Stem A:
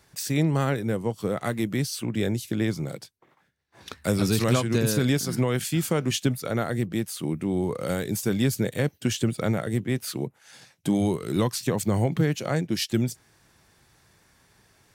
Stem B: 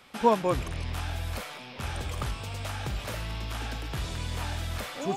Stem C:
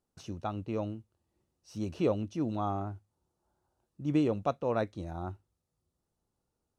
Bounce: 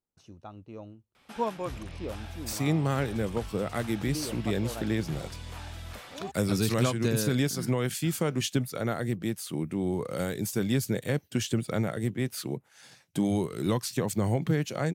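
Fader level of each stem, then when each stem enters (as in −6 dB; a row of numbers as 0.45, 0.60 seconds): −3.5, −8.0, −9.5 decibels; 2.30, 1.15, 0.00 seconds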